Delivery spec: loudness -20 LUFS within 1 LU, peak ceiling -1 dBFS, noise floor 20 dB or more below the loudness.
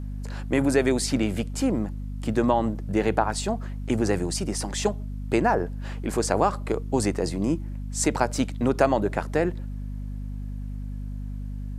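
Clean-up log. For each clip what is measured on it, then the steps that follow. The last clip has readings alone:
hum 50 Hz; harmonics up to 250 Hz; hum level -30 dBFS; loudness -26.5 LUFS; peak -5.0 dBFS; loudness target -20.0 LUFS
-> de-hum 50 Hz, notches 5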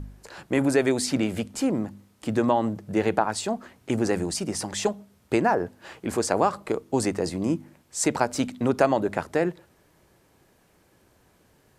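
hum none; loudness -26.0 LUFS; peak -5.5 dBFS; loudness target -20.0 LUFS
-> gain +6 dB; limiter -1 dBFS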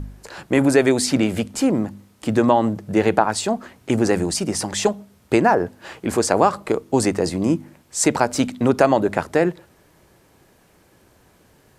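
loudness -20.0 LUFS; peak -1.0 dBFS; noise floor -56 dBFS

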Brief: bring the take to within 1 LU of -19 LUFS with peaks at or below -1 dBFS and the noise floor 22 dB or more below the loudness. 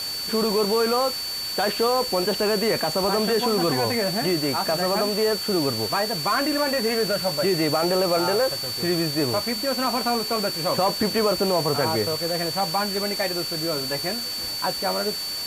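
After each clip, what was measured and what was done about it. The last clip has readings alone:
steady tone 4500 Hz; tone level -28 dBFS; noise floor -30 dBFS; noise floor target -45 dBFS; loudness -22.5 LUFS; peak -9.5 dBFS; loudness target -19.0 LUFS
-> notch 4500 Hz, Q 30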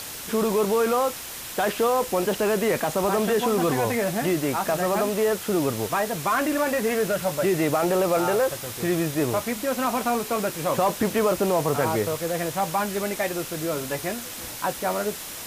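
steady tone none; noise floor -36 dBFS; noise floor target -47 dBFS
-> denoiser 11 dB, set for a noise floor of -36 dBFS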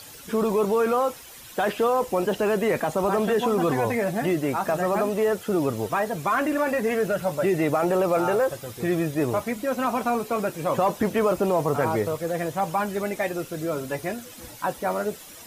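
noise floor -44 dBFS; noise floor target -47 dBFS
-> denoiser 6 dB, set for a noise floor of -44 dBFS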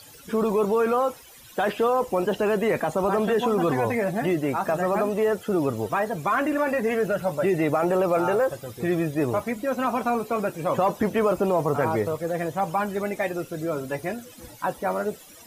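noise floor -48 dBFS; loudness -25.0 LUFS; peak -11.5 dBFS; loudness target -19.0 LUFS
-> gain +6 dB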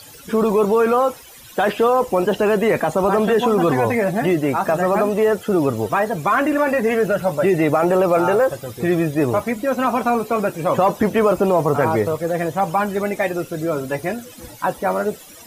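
loudness -19.0 LUFS; peak -5.5 dBFS; noise floor -42 dBFS

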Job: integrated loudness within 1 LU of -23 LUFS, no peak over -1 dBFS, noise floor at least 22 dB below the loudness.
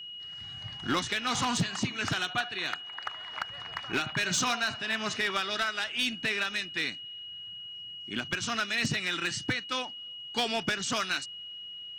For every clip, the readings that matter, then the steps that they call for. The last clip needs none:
clipped 0.6%; flat tops at -21.5 dBFS; steady tone 2900 Hz; tone level -40 dBFS; loudness -31.0 LUFS; peak -21.5 dBFS; loudness target -23.0 LUFS
-> clip repair -21.5 dBFS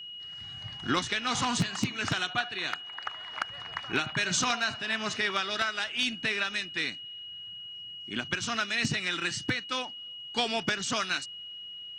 clipped 0.0%; steady tone 2900 Hz; tone level -40 dBFS
-> notch 2900 Hz, Q 30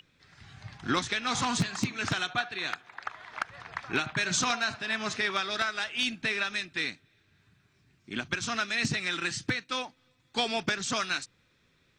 steady tone none; loudness -30.5 LUFS; peak -12.5 dBFS; loudness target -23.0 LUFS
-> gain +7.5 dB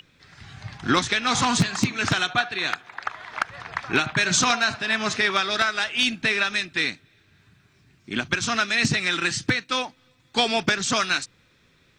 loudness -23.0 LUFS; peak -5.0 dBFS; noise floor -61 dBFS

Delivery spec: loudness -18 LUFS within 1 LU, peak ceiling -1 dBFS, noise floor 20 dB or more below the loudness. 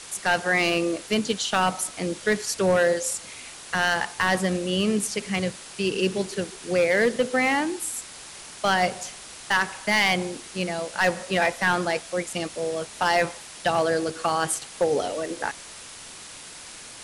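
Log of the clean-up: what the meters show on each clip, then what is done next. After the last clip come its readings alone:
clipped 0.7%; flat tops at -14.0 dBFS; noise floor -42 dBFS; noise floor target -45 dBFS; loudness -24.5 LUFS; peak -14.0 dBFS; loudness target -18.0 LUFS
-> clip repair -14 dBFS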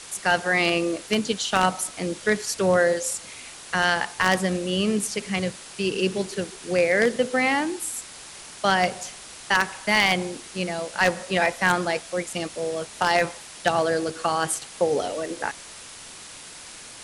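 clipped 0.0%; noise floor -42 dBFS; noise floor target -44 dBFS
-> denoiser 6 dB, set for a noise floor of -42 dBFS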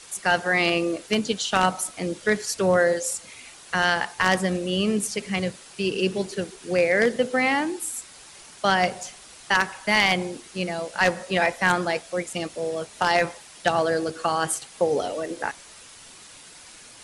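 noise floor -47 dBFS; loudness -24.0 LUFS; peak -5.0 dBFS; loudness target -18.0 LUFS
-> gain +6 dB; limiter -1 dBFS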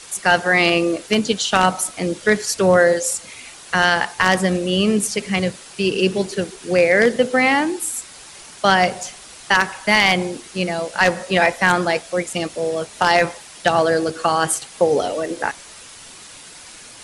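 loudness -18.5 LUFS; peak -1.0 dBFS; noise floor -41 dBFS

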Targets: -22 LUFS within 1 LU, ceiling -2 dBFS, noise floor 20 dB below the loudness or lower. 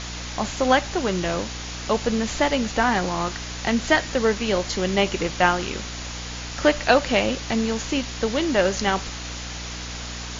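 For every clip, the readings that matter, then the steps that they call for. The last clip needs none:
hum 60 Hz; harmonics up to 300 Hz; hum level -33 dBFS; noise floor -33 dBFS; noise floor target -44 dBFS; loudness -23.5 LUFS; peak -4.0 dBFS; loudness target -22.0 LUFS
-> notches 60/120/180/240/300 Hz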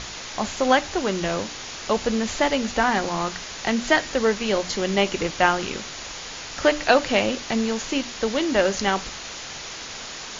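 hum none; noise floor -36 dBFS; noise floor target -44 dBFS
-> denoiser 8 dB, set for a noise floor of -36 dBFS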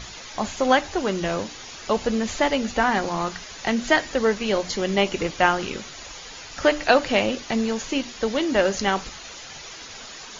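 noise floor -40 dBFS; noise floor target -43 dBFS
-> denoiser 6 dB, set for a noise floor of -40 dBFS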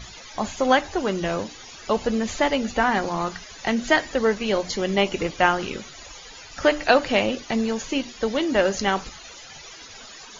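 noise floor -43 dBFS; loudness -23.0 LUFS; peak -3.5 dBFS; loudness target -22.0 LUFS
-> gain +1 dB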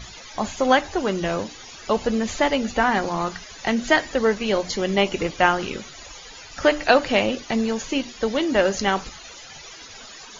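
loudness -22.0 LUFS; peak -2.5 dBFS; noise floor -42 dBFS

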